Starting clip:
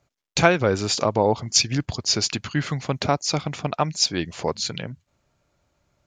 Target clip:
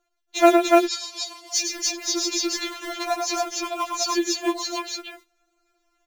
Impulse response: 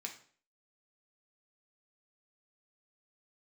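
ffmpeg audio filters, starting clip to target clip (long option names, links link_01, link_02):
-filter_complex "[0:a]bandreject=frequency=4900:width=10,acrusher=bits=5:mode=log:mix=0:aa=0.000001,asettb=1/sr,asplit=3[link_01][link_02][link_03];[link_01]atrim=end=0.574[link_04];[link_02]atrim=start=0.57:end=1.54,asetpts=PTS-STARTPTS,afade=type=in:duration=0.004:curve=qsin,afade=type=out:start_time=0.966:duration=0.004:curve=qsin,bandpass=frequency=4200:width_type=q:width=1.2:csg=0[link_05];[link_03]atrim=start=1.536[link_06];[link_04][link_05]acrossfade=duration=0.004:curve1=hsin:curve2=qsin[link_07];[link_07][link_06]acrossfade=duration=0.004:curve1=qsin:curve2=hsin,asplit=2[link_08][link_09];[link_09]aecho=0:1:107.9|291.5:0.501|0.891[link_10];[link_08][link_10]amix=inputs=2:normalize=0,afftfilt=real='re*4*eq(mod(b,16),0)':imag='im*4*eq(mod(b,16),0)':win_size=2048:overlap=0.75"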